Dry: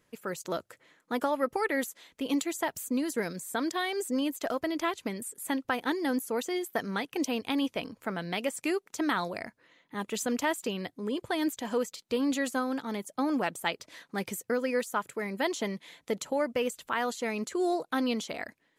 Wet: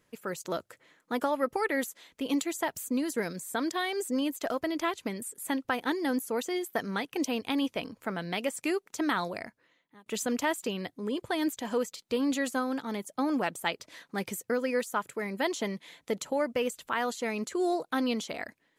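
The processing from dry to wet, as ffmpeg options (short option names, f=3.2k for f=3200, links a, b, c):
-filter_complex "[0:a]asplit=2[a][b];[a]atrim=end=10.06,asetpts=PTS-STARTPTS,afade=t=out:st=9.33:d=0.73[c];[b]atrim=start=10.06,asetpts=PTS-STARTPTS,afade=t=in:d=0.004:c=hsin[d];[c][d]concat=n=2:v=0:a=1"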